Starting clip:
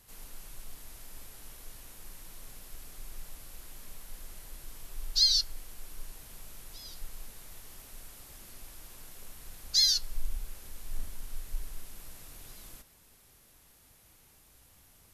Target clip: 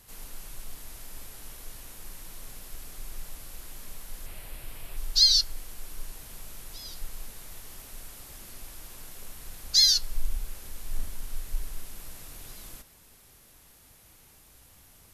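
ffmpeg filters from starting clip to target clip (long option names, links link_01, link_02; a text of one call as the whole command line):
ffmpeg -i in.wav -filter_complex "[0:a]asettb=1/sr,asplit=3[link_01][link_02][link_03];[link_01]atrim=end=4.264[link_04];[link_02]atrim=start=4.26:end=4.97,asetpts=PTS-STARTPTS,afade=type=in:duration=0.004:curve=qsin,afade=type=out:start_time=0.706:duration=0.004:curve=qsin,equalizer=frequency=100:width_type=o:width=0.67:gain=6,equalizer=frequency=630:width_type=o:width=0.67:gain=4,equalizer=frequency=2500:width_type=o:width=0.67:gain=6,equalizer=frequency=6300:width_type=o:width=0.67:gain=-7[link_05];[link_03]atrim=start=4.966[link_06];[link_04][link_05]acrossfade=duration=0.004:curve1=hsin:curve2=qsin[link_07];[link_07][link_06]acrossfade=duration=0.004:curve1=qsin:curve2=hsin,volume=4.5dB" out.wav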